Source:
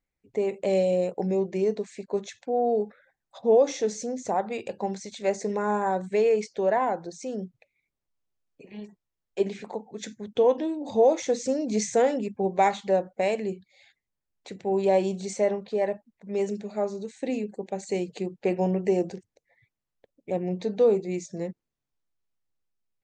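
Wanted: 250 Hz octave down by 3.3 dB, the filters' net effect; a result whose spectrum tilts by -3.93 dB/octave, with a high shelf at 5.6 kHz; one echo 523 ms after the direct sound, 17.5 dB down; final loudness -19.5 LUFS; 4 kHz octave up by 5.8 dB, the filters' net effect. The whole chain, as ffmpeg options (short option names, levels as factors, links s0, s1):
-af "equalizer=f=250:t=o:g=-5,equalizer=f=4000:t=o:g=4.5,highshelf=f=5600:g=6.5,aecho=1:1:523:0.133,volume=2.66"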